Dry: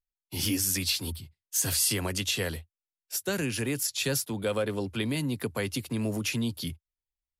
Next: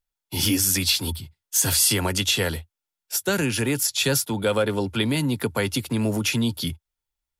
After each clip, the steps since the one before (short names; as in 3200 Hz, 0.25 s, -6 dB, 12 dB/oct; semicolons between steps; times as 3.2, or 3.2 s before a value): small resonant body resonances 890/1400/3400 Hz, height 8 dB; gain +6.5 dB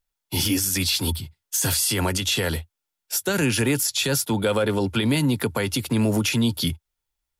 limiter -16.5 dBFS, peak gain reduction 8.5 dB; gain +3.5 dB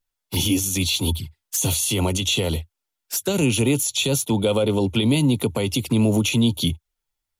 envelope flanger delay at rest 11.2 ms, full sweep at -22 dBFS; gain +3 dB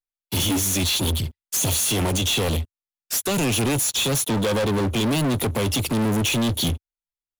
sample leveller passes 5; gain -9 dB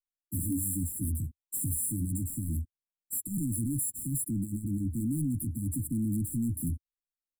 brick-wall FIR band-stop 330–7300 Hz; gain -7.5 dB